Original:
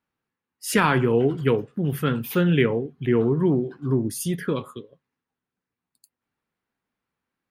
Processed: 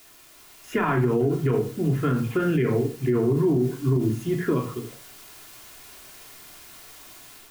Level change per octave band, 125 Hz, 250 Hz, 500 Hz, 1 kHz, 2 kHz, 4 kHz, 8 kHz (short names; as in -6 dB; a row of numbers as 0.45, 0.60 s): +0.5, -0.5, -1.0, -3.0, -5.0, -7.5, -7.0 dB